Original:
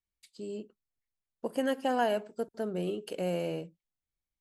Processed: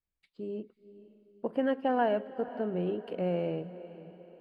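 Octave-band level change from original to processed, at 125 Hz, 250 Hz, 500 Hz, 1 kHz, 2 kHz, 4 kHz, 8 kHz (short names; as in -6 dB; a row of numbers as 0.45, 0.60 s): +2.5 dB, +2.0 dB, +1.0 dB, +0.5 dB, -1.5 dB, -6.5 dB, under -25 dB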